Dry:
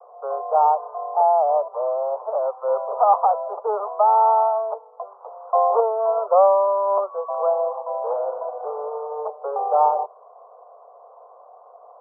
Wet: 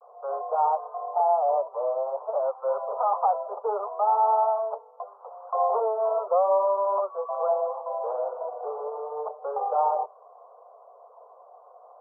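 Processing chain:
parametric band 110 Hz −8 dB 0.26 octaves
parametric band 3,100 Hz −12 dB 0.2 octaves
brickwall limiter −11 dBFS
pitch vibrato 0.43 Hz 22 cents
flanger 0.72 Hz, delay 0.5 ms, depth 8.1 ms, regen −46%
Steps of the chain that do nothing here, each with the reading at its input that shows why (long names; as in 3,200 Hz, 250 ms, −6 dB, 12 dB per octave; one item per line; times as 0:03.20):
parametric band 110 Hz: nothing at its input below 380 Hz
parametric band 3,100 Hz: nothing at its input above 1,400 Hz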